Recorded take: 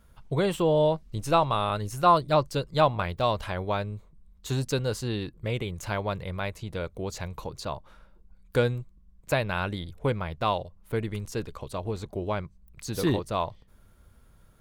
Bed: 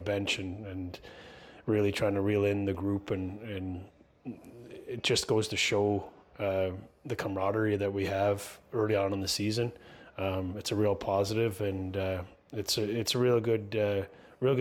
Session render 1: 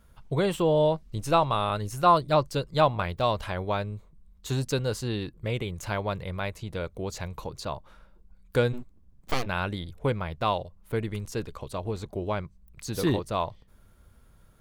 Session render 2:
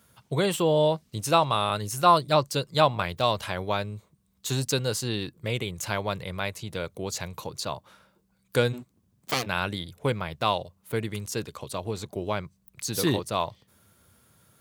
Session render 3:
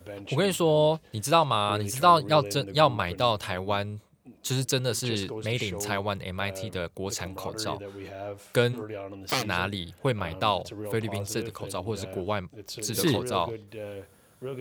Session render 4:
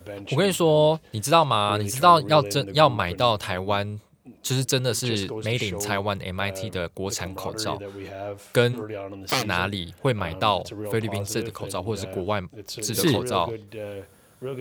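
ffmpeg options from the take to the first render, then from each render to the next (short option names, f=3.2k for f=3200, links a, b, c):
-filter_complex "[0:a]asplit=3[a][b][c];[a]afade=t=out:st=8.72:d=0.02[d];[b]aeval=exprs='abs(val(0))':c=same,afade=t=in:st=8.72:d=0.02,afade=t=out:st=9.45:d=0.02[e];[c]afade=t=in:st=9.45:d=0.02[f];[d][e][f]amix=inputs=3:normalize=0"
-af "highpass=f=92:w=0.5412,highpass=f=92:w=1.3066,highshelf=f=2.9k:g=9.5"
-filter_complex "[1:a]volume=-9dB[a];[0:a][a]amix=inputs=2:normalize=0"
-af "volume=3.5dB"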